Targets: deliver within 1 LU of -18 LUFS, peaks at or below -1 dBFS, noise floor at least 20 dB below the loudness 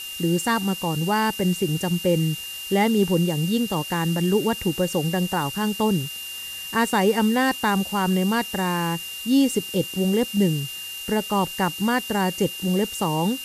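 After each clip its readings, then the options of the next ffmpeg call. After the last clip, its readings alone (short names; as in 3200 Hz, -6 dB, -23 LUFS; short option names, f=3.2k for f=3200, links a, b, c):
steady tone 2800 Hz; tone level -33 dBFS; noise floor -34 dBFS; noise floor target -43 dBFS; loudness -23.0 LUFS; peak -8.0 dBFS; loudness target -18.0 LUFS
-> -af "bandreject=f=2.8k:w=30"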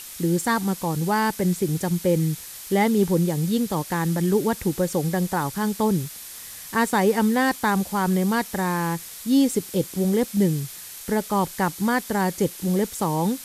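steady tone none; noise floor -39 dBFS; noise floor target -43 dBFS
-> -af "afftdn=nr=6:nf=-39"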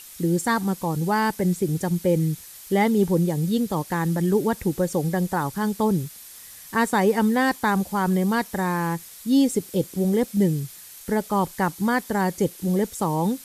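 noise floor -44 dBFS; loudness -23.5 LUFS; peak -8.5 dBFS; loudness target -18.0 LUFS
-> -af "volume=5.5dB"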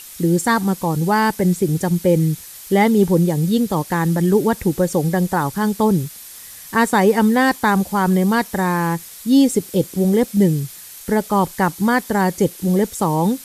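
loudness -18.0 LUFS; peak -3.0 dBFS; noise floor -38 dBFS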